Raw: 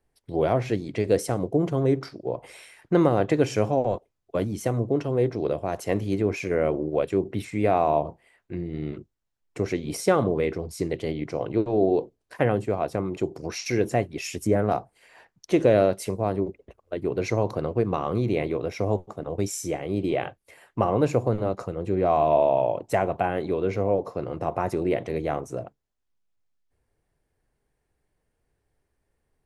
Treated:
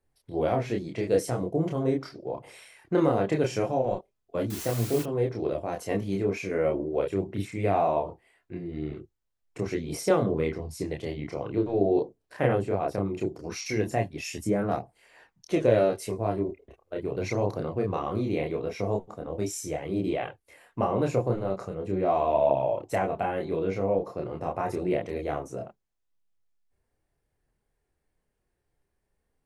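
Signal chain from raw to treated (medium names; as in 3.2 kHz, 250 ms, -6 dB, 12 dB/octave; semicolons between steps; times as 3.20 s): 4.50–5.03 s: word length cut 6-bit, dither triangular; chorus voices 2, 0.2 Hz, delay 28 ms, depth 3.2 ms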